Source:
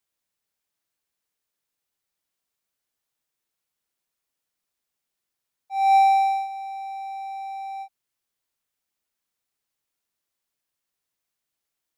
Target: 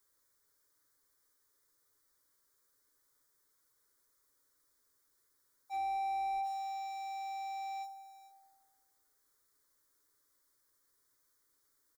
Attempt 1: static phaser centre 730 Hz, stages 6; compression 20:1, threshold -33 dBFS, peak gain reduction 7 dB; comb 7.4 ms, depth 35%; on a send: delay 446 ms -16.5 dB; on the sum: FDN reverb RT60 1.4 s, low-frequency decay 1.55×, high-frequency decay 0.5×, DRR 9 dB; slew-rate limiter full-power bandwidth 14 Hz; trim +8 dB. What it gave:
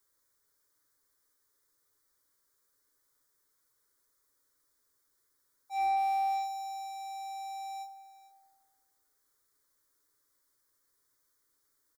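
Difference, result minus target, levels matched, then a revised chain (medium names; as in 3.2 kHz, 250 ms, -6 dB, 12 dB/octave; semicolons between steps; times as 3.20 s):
slew-rate limiter: distortion -11 dB
static phaser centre 730 Hz, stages 6; compression 20:1, threshold -33 dBFS, peak gain reduction 7 dB; comb 7.4 ms, depth 35%; on a send: delay 446 ms -16.5 dB; on the sum: FDN reverb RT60 1.4 s, low-frequency decay 1.55×, high-frequency decay 0.5×, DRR 9 dB; slew-rate limiter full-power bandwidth 6 Hz; trim +8 dB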